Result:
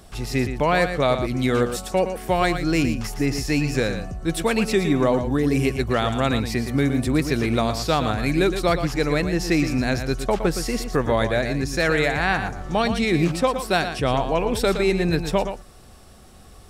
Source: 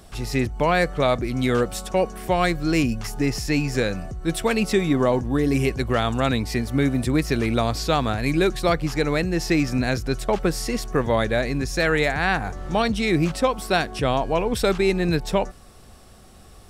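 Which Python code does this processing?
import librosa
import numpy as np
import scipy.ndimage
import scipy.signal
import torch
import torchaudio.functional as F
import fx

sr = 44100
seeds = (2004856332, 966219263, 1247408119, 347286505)

y = x + 10.0 ** (-9.0 / 20.0) * np.pad(x, (int(116 * sr / 1000.0), 0))[:len(x)]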